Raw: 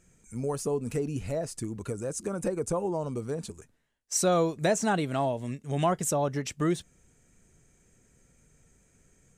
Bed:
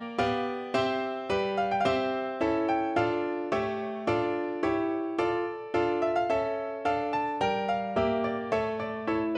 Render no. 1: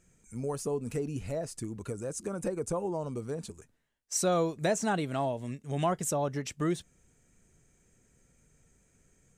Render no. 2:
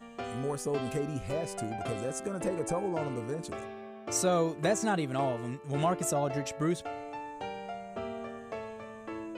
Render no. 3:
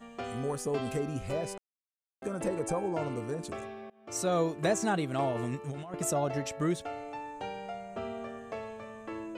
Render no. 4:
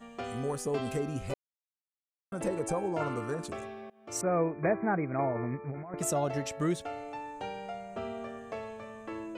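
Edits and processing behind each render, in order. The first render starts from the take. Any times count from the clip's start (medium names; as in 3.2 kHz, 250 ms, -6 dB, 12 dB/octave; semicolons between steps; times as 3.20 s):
trim -3 dB
add bed -11.5 dB
1.58–2.22 s: mute; 3.90–4.41 s: fade in, from -23.5 dB; 5.35–5.94 s: compressor with a negative ratio -37 dBFS
1.34–2.32 s: mute; 3.00–3.47 s: peaking EQ 1.3 kHz +10.5 dB 0.84 oct; 4.21–5.98 s: brick-wall FIR low-pass 2.5 kHz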